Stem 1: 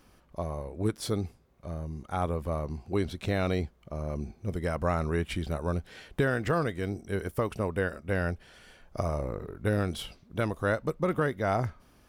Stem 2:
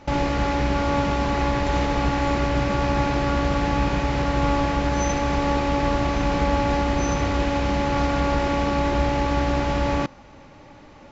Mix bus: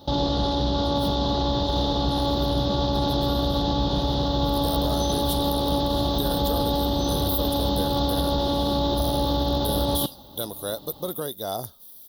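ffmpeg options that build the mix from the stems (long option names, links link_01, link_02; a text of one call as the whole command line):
ffmpeg -i stem1.wav -i stem2.wav -filter_complex "[0:a]aemphasis=mode=production:type=bsi,acrusher=bits=10:mix=0:aa=0.000001,aexciter=amount=4.5:drive=3.7:freq=6600,volume=-0.5dB,afade=type=in:start_time=1.24:duration=0.47:silence=0.266073,afade=type=in:start_time=4.15:duration=0.63:silence=0.251189[link_01];[1:a]highpass=46,volume=0dB[link_02];[link_01][link_02]amix=inputs=2:normalize=0,firequalizer=gain_entry='entry(740,0);entry(2300,-25);entry(3500,14);entry(7600,-14);entry(11000,0)':delay=0.05:min_phase=1,alimiter=limit=-14dB:level=0:latency=1:release=28" out.wav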